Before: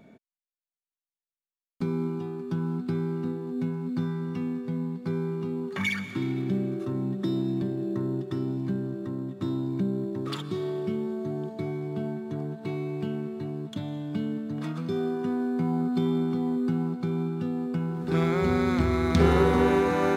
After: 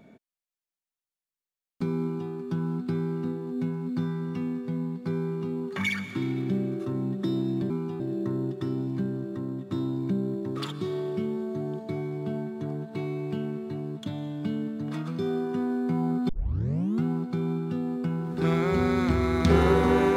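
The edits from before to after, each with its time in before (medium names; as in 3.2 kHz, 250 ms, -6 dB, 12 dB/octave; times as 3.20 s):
2.01–2.31 s: copy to 7.70 s
15.99 s: tape start 0.74 s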